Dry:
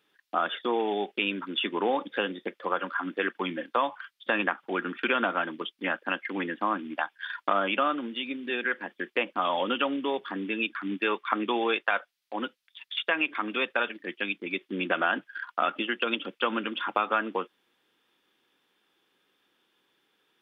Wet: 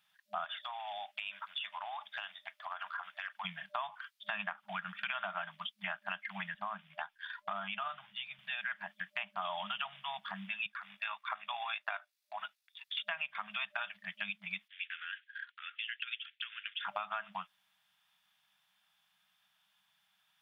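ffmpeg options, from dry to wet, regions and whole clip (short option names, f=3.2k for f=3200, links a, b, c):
-filter_complex "[0:a]asettb=1/sr,asplit=3[a][b][c];[a]atrim=end=0.444[d];[b]atrim=start=0.44:end=3.45,asetpts=PTS-STARTPTS,afade=t=in:d=0.004:c=qsin,afade=t=out:st=3.006:d=0.004:c=qsin,highpass=f=440:w=0.5412,highpass=f=440:w=1.3066,acompressor=threshold=-30dB:ratio=6:attack=3.2:release=140:knee=1:detection=peak[e];[c]atrim=start=3.446[f];[d][e]acrossfade=d=0.004:c1=hsin:c2=qsin[g];[g][f]acrossfade=d=0.004:c1=qsin:c2=hsin,asettb=1/sr,asplit=3[h][i][j];[h]atrim=end=6.544[k];[i]atrim=start=6.54:end=8.39,asetpts=PTS-STARTPTS,afade=t=in:d=0.004:c=qsin,afade=t=out:st=1.846:d=0.004:c=qsin,lowshelf=f=140:g=10,flanger=delay=2:depth=1.4:regen=81:speed=1.9:shape=triangular[l];[j]atrim=start=8.386[m];[k][l]acrossfade=d=0.004:c1=hsin:c2=qsin[n];[n][m]acrossfade=d=0.004:c1=qsin:c2=hsin,asettb=1/sr,asplit=3[o][p][q];[o]atrim=end=10.664[r];[p]atrim=start=10.66:end=12.86,asetpts=PTS-STARTPTS,afade=t=in:d=0.004:c=qsin,afade=t=out:st=2.196:d=0.004:c=qsin,highpass=f=360:w=0.5412,highpass=f=360:w=1.3066,bandreject=f=3.1k:w=11,tremolo=f=53:d=0.333[s];[q]atrim=start=12.856[t];[r][s]acrossfade=d=0.004:c1=hsin:c2=qsin[u];[u][t]acrossfade=d=0.004:c1=qsin:c2=hsin,asettb=1/sr,asplit=3[v][w][x];[v]atrim=end=14.684[y];[w]atrim=start=14.68:end=16.85,asetpts=PTS-STARTPTS,afade=t=in:d=0.004:c=qsin,afade=t=out:st=2.166:d=0.004:c=qsin,acompressor=threshold=-27dB:ratio=3:attack=3.2:release=140:knee=1:detection=peak,asuperpass=centerf=2500:order=8:qfactor=1.1[z];[x]atrim=start=16.846[aa];[y][z]acrossfade=d=0.004:c1=hsin:c2=qsin[ab];[ab][aa]acrossfade=d=0.004:c1=qsin:c2=hsin,afftfilt=real='re*(1-between(b*sr/4096,210,600))':imag='im*(1-between(b*sr/4096,210,600))':win_size=4096:overlap=0.75,highshelf=f=3.7k:g=6.5,acompressor=threshold=-31dB:ratio=3,volume=-5dB"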